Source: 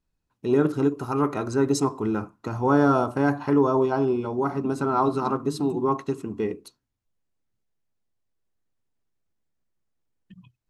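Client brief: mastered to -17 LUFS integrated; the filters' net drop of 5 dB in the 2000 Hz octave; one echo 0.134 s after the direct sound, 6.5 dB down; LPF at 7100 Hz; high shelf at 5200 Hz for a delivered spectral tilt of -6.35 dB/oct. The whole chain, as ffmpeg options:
-af "lowpass=7.1k,equalizer=f=2k:t=o:g=-8.5,highshelf=f=5.2k:g=4.5,aecho=1:1:134:0.473,volume=6.5dB"

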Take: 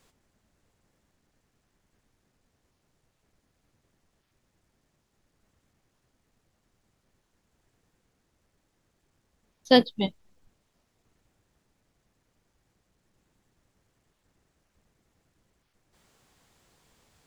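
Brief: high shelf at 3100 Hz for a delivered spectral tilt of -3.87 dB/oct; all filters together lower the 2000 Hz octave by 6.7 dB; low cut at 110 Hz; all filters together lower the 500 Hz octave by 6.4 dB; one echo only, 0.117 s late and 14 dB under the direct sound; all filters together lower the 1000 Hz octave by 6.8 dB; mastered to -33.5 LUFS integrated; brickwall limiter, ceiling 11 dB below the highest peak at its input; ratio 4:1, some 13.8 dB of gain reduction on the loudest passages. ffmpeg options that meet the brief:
-af "highpass=110,equalizer=f=500:t=o:g=-5,equalizer=f=1k:t=o:g=-7,equalizer=f=2k:t=o:g=-7,highshelf=f=3.1k:g=5.5,acompressor=threshold=-32dB:ratio=4,alimiter=level_in=5.5dB:limit=-24dB:level=0:latency=1,volume=-5.5dB,aecho=1:1:117:0.2,volume=14dB"

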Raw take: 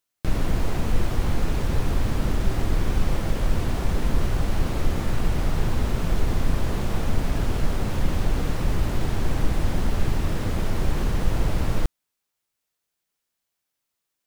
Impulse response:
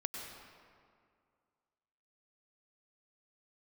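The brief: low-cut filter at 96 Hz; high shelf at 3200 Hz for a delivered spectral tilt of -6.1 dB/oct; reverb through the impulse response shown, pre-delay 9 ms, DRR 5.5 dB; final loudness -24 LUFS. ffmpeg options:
-filter_complex "[0:a]highpass=96,highshelf=f=3.2k:g=-3,asplit=2[a][b];[1:a]atrim=start_sample=2205,adelay=9[c];[b][c]afir=irnorm=-1:irlink=0,volume=-6dB[d];[a][d]amix=inputs=2:normalize=0,volume=5dB"

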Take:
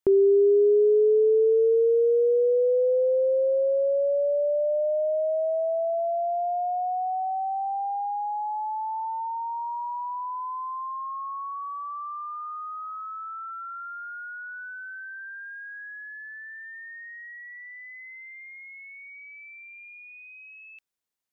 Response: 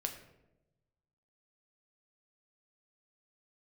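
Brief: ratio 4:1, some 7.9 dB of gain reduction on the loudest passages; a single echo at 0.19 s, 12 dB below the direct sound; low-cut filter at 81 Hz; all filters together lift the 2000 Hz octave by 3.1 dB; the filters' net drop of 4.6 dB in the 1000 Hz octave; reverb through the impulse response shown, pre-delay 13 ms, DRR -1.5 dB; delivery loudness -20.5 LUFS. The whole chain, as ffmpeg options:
-filter_complex "[0:a]highpass=81,equalizer=f=1k:t=o:g=-8,equalizer=f=2k:t=o:g=7,acompressor=threshold=-28dB:ratio=4,aecho=1:1:190:0.251,asplit=2[a][b];[1:a]atrim=start_sample=2205,adelay=13[c];[b][c]afir=irnorm=-1:irlink=0,volume=1dB[d];[a][d]amix=inputs=2:normalize=0,volume=8dB"

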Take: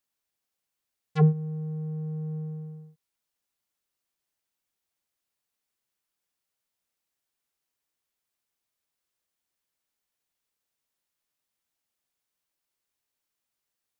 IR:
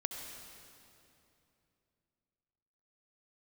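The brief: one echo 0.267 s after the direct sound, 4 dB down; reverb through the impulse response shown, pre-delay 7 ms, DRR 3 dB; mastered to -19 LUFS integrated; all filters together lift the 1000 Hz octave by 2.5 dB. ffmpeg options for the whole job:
-filter_complex "[0:a]equalizer=f=1k:t=o:g=3.5,aecho=1:1:267:0.631,asplit=2[a][b];[1:a]atrim=start_sample=2205,adelay=7[c];[b][c]afir=irnorm=-1:irlink=0,volume=-4dB[d];[a][d]amix=inputs=2:normalize=0,volume=5dB"

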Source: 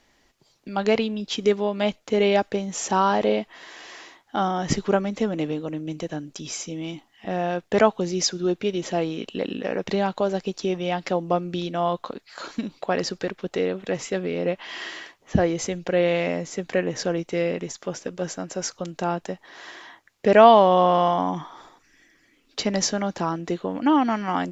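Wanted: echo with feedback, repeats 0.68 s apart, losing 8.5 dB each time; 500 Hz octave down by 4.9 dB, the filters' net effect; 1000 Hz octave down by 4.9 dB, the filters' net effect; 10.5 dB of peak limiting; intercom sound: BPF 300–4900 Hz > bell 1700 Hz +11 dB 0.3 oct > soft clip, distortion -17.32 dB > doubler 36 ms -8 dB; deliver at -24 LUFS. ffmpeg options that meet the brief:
-filter_complex "[0:a]equalizer=f=500:t=o:g=-4,equalizer=f=1k:t=o:g=-5.5,alimiter=limit=-16dB:level=0:latency=1,highpass=300,lowpass=4.9k,equalizer=f=1.7k:t=o:w=0.3:g=11,aecho=1:1:680|1360|2040|2720:0.376|0.143|0.0543|0.0206,asoftclip=threshold=-19.5dB,asplit=2[a][b];[b]adelay=36,volume=-8dB[c];[a][c]amix=inputs=2:normalize=0,volume=7dB"

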